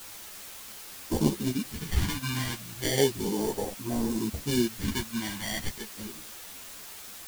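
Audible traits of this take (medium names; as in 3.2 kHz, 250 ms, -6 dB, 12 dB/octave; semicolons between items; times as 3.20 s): aliases and images of a low sample rate 1.3 kHz, jitter 0%; phasing stages 2, 0.33 Hz, lowest notch 480–2400 Hz; a quantiser's noise floor 8-bit, dither triangular; a shimmering, thickened sound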